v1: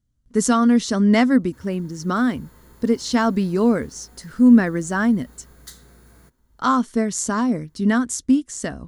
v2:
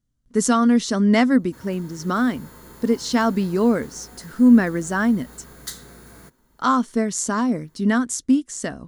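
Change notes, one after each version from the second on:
background +8.0 dB
master: add parametric band 63 Hz −7.5 dB 1.6 octaves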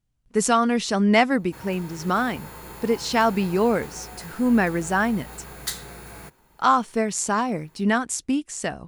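background +4.0 dB
master: add thirty-one-band graphic EQ 250 Hz −9 dB, 800 Hz +8 dB, 2,500 Hz +10 dB, 6,300 Hz −3 dB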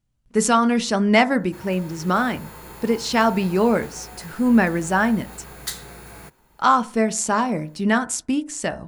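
reverb: on, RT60 0.40 s

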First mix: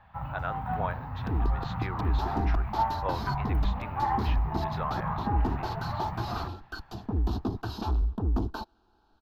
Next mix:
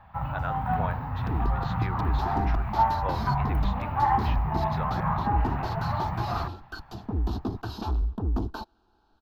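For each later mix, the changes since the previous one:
first sound +5.0 dB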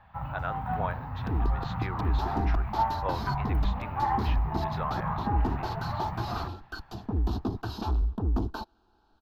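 first sound −4.5 dB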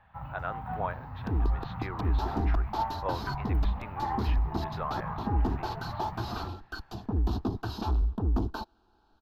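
speech: add high-frequency loss of the air 200 metres
first sound −5.0 dB

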